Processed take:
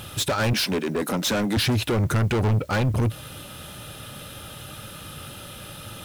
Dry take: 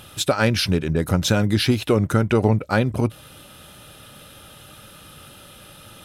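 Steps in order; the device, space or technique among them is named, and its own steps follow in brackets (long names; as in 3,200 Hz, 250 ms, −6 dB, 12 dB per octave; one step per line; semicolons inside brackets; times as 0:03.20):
0:00.53–0:01.57: Butterworth high-pass 210 Hz 36 dB per octave
open-reel tape (soft clipping −25 dBFS, distortion −4 dB; parametric band 110 Hz +4 dB 1.04 octaves; white noise bed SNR 33 dB)
level +4.5 dB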